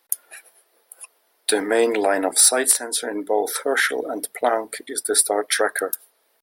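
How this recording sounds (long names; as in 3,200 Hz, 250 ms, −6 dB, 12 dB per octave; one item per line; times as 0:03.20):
background noise floor −65 dBFS
spectral slope −1.0 dB per octave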